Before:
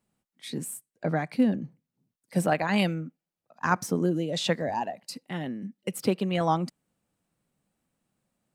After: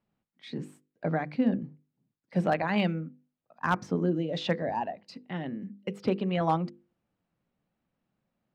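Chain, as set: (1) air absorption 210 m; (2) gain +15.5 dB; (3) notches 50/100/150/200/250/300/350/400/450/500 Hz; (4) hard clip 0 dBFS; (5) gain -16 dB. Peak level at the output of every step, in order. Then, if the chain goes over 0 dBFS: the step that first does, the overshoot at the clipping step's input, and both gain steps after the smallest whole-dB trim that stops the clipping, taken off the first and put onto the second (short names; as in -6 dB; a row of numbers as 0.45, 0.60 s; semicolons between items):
-9.5, +6.0, +6.0, 0.0, -16.0 dBFS; step 2, 6.0 dB; step 2 +9.5 dB, step 5 -10 dB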